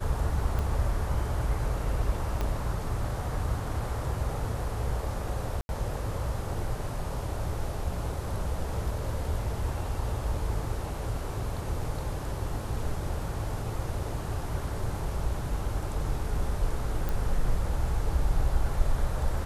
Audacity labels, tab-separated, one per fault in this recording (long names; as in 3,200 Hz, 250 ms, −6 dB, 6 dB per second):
0.590000	0.590000	click −19 dBFS
2.410000	2.410000	click −17 dBFS
5.610000	5.690000	drop-out 81 ms
17.090000	17.090000	click